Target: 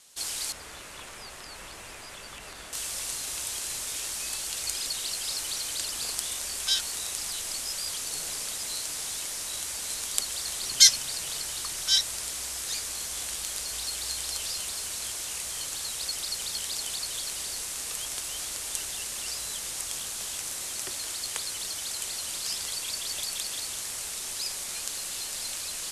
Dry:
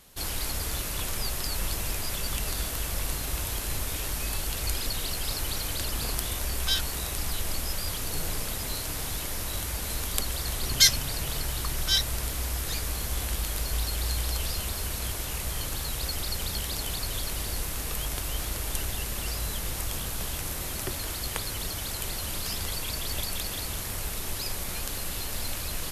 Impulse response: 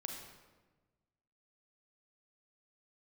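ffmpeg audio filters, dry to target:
-filter_complex "[0:a]asettb=1/sr,asplit=3[a][b][c];[a]atrim=end=0.524[d];[b]atrim=start=0.52:end=2.73,asetpts=PTS-STARTPTS,afade=t=in:d=0.004:c=qsin,afade=t=out:st=2.206:d=0.004:c=qsin,acrossover=split=2600[e][f];[f]acompressor=threshold=-49dB:ratio=4:attack=1:release=60[g];[e][g]amix=inputs=2:normalize=0[h];[c]atrim=start=2.726[i];[d][h]acrossfade=d=0.004:c1=hsin:c2=qsin[j];[j][i]acrossfade=d=0.004:c1=qsin:c2=hsin,lowpass=f=8.5k:w=0.5412,lowpass=f=8.5k:w=1.3066,aemphasis=mode=production:type=riaa,volume=-5.5dB"

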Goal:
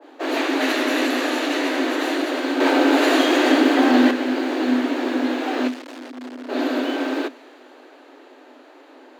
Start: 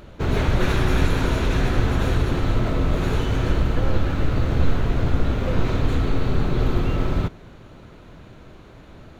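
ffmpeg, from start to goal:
-filter_complex "[0:a]bass=f=250:g=-5,treble=f=4k:g=-2,asettb=1/sr,asplit=3[a][b][c];[a]atrim=end=2.604[d];[b]atrim=start=2.6:end=4.11,asetpts=PTS-STARTPTS,afade=t=in:d=0.004:c=qsin,afade=t=out:st=1.506:d=0.004:c=qsin,acontrast=84[e];[c]atrim=start=4.106[f];[d][e]acrossfade=d=0.004:c1=hsin:c2=qsin[g];[g][f]acrossfade=d=0.004:c1=qsin:c2=hsin,asplit=3[h][i][j];[h]afade=t=out:st=5.67:d=0.02[k];[i]aeval=exprs='(tanh(70.8*val(0)+0.65)-tanh(0.65))/70.8':c=same,afade=t=in:st=5.67:d=0.02,afade=t=out:st=6.48:d=0.02[l];[j]afade=t=in:st=6.48:d=0.02[m];[k][l][m]amix=inputs=3:normalize=0,afreqshift=250,adynamicequalizer=threshold=0.0178:dfrequency=1500:dqfactor=0.7:tfrequency=1500:tqfactor=0.7:attack=5:release=100:ratio=0.375:range=3:mode=boostabove:tftype=highshelf"

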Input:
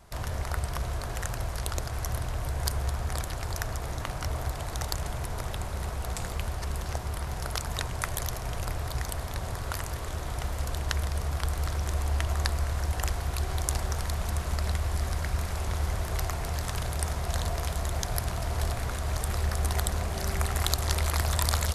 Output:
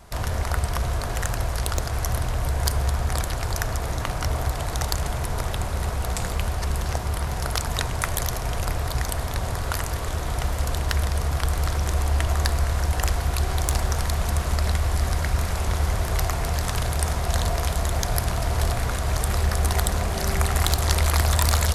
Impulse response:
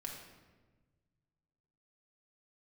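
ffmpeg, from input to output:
-filter_complex "[0:a]aeval=exprs='0.631*sin(PI/2*2.24*val(0)/0.631)':c=same,asplit=2[a][b];[1:a]atrim=start_sample=2205[c];[b][c]afir=irnorm=-1:irlink=0,volume=-10.5dB[d];[a][d]amix=inputs=2:normalize=0,volume=-5.5dB"

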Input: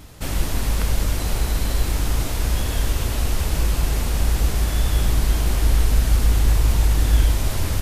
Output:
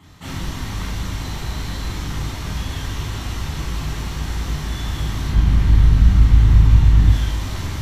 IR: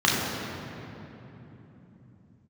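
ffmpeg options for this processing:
-filter_complex "[0:a]asettb=1/sr,asplit=3[a][b][c];[a]atrim=end=5.284[d];[b]atrim=start=5.28:end=7.09,asetpts=PTS-STARTPTS,afade=t=in:d=0.004:c=qsin,afade=t=out:st=1.806:d=0.004:c=qsin,bass=f=250:g=11,treble=f=4k:g=-6[e];[c]atrim=start=7.086[f];[d][e]acrossfade=d=0.004:c1=hsin:c2=qsin[g];[g][f]acrossfade=d=0.004:c1=qsin:c2=hsin[h];[1:a]atrim=start_sample=2205,atrim=end_sample=3528[i];[h][i]afir=irnorm=-1:irlink=0,volume=-17dB"

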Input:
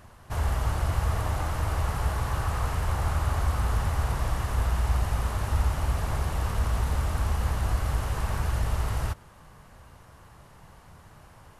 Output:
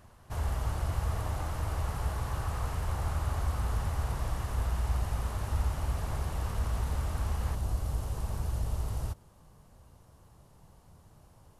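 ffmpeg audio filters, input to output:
-af "asetnsamples=n=441:p=0,asendcmd='7.55 equalizer g -11',equalizer=f=1.8k:w=0.75:g=-3,volume=-5dB"

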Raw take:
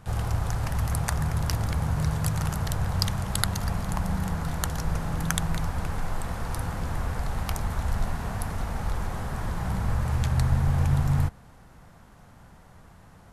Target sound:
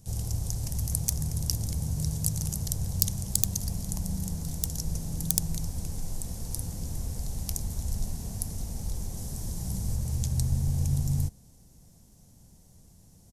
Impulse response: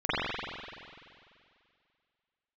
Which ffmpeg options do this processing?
-filter_complex "[0:a]asettb=1/sr,asplit=3[a][b][c];[a]atrim=end=9.174[d];[b]atrim=start=9.17:end=9.96,asetpts=PTS-STARTPTS,afade=t=in:d=0.004:c=qsin,afade=t=out:st=0.786:d=0.004:c=qsin,bass=f=250:g=0,treble=f=4k:g=3[e];[c]atrim=start=9.956[f];[d][e]acrossfade=d=0.004:c1=hsin:c2=qsin[g];[g][f]acrossfade=d=0.004:c1=qsin:c2=hsin,aeval=exprs='(mod(2.99*val(0)+1,2)-1)/2.99':c=same,firequalizer=gain_entry='entry(200,0);entry(1300,-22);entry(2100,-13);entry(5700,10)':delay=0.05:min_phase=1,volume=-4dB"

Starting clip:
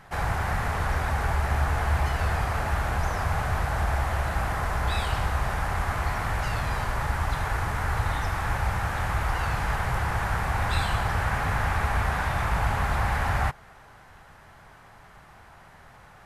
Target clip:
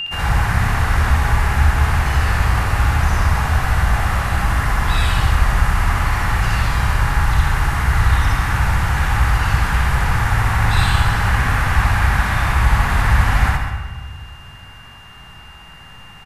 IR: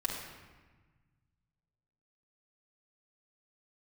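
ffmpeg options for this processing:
-filter_complex "[0:a]equalizer=f=600:w=1.1:g=-8.5,asoftclip=type=hard:threshold=-15.5dB,aeval=exprs='val(0)+0.0398*sin(2*PI*2800*n/s)':c=same,aecho=1:1:64.14|201.2:1|0.282,asplit=2[a][b];[1:a]atrim=start_sample=2205,adelay=80[c];[b][c]afir=irnorm=-1:irlink=0,volume=-9dB[d];[a][d]amix=inputs=2:normalize=0,volume=6dB"

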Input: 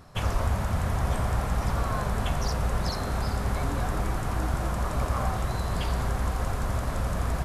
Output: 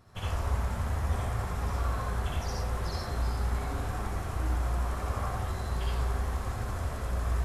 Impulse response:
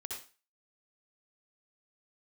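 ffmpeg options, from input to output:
-filter_complex "[0:a]flanger=delay=8.2:depth=10:regen=58:speed=0.76:shape=triangular[a];[1:a]atrim=start_sample=2205[b];[a][b]afir=irnorm=-1:irlink=0"

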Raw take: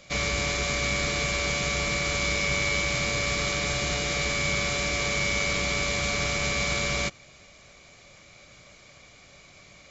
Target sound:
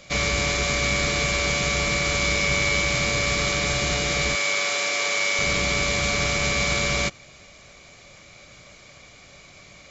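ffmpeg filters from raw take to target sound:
-filter_complex "[0:a]asettb=1/sr,asplit=3[a][b][c];[a]atrim=end=4.354[d];[b]atrim=start=4.35:end=5.39,asetpts=PTS-STARTPTS,afade=t=in:d=0.004:c=qsin,afade=t=out:st=1.036:d=0.004:c=qsin,highpass=470[e];[c]atrim=start=5.386[f];[d][e]acrossfade=d=0.004:c1=hsin:c2=qsin[g];[g][f]acrossfade=d=0.004:c1=qsin:c2=hsin,volume=4dB"

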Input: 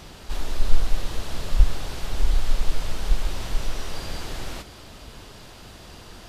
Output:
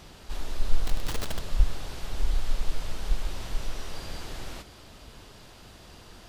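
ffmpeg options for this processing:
-filter_complex "[0:a]asettb=1/sr,asplit=3[a][b][c];[a]atrim=end=0.844[d];[b]atrim=start=0.84:end=1.39,asetpts=PTS-STARTPTS,afade=t=in:d=0.004:c=qsin,afade=t=out:st=0.546:d=0.004:c=qsin,aeval=exprs='val(0)+0.5*0.075*sgn(val(0))':c=same[e];[c]atrim=start=1.386[f];[d][e]acrossfade=d=0.004:c1=hsin:c2=qsin[g];[g][f]acrossfade=d=0.004:c1=qsin:c2=hsin,volume=-5.5dB"

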